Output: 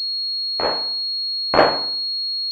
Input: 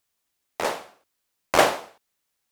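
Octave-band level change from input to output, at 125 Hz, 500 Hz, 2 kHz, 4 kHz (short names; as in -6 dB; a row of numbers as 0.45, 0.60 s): +5.0, +4.5, +1.5, +16.5 dB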